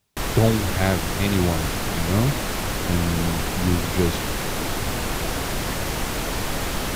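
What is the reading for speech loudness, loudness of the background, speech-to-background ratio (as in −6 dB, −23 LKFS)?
−24.5 LKFS, −26.0 LKFS, 1.5 dB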